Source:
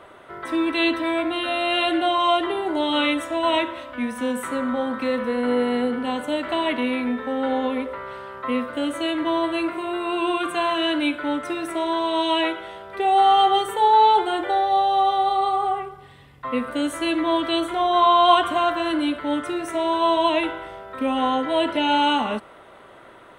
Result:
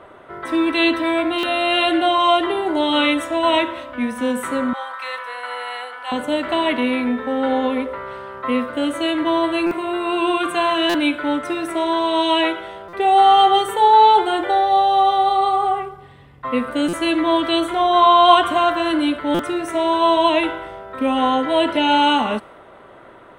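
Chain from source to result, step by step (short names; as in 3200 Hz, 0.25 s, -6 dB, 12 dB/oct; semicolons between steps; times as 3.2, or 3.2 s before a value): 4.73–6.12 HPF 800 Hz 24 dB/oct; stuck buffer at 1.38/9.66/10.89/12.88/16.88/19.34, samples 256, times 8; mismatched tape noise reduction decoder only; gain +4 dB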